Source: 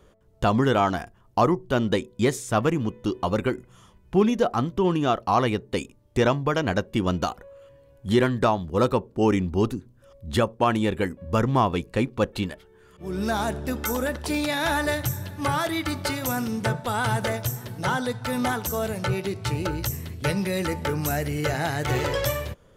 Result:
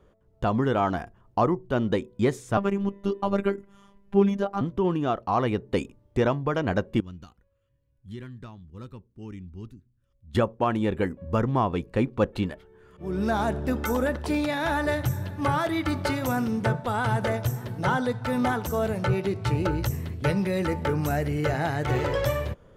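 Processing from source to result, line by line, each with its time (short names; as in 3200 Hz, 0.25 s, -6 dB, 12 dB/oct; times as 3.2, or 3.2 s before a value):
2.57–4.61 robotiser 199 Hz
7–10.35 passive tone stack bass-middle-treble 6-0-2
whole clip: high shelf 3000 Hz -11.5 dB; vocal rider within 3 dB 0.5 s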